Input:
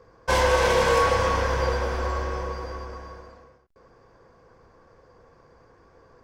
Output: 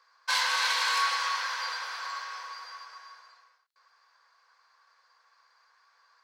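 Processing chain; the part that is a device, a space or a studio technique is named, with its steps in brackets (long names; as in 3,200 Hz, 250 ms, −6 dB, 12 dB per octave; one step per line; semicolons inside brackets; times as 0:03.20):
headphones lying on a table (high-pass filter 1,100 Hz 24 dB per octave; parametric band 4,200 Hz +11 dB 0.36 octaves)
level −2 dB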